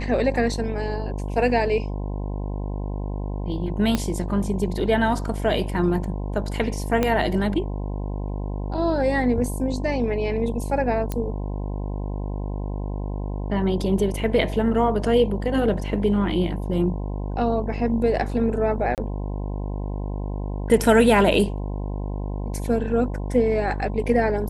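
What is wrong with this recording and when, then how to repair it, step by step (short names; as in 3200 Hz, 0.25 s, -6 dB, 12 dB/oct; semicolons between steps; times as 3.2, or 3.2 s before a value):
buzz 50 Hz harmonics 21 -28 dBFS
3.95 pop -8 dBFS
7.03 pop -8 dBFS
11.12 pop -13 dBFS
18.95–18.98 gap 28 ms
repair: de-click; de-hum 50 Hz, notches 21; interpolate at 18.95, 28 ms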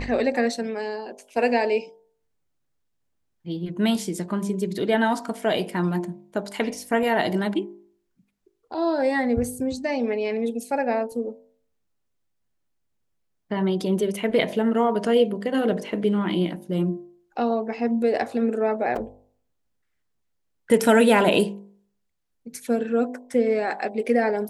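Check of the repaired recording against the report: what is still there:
3.95 pop
7.03 pop
11.12 pop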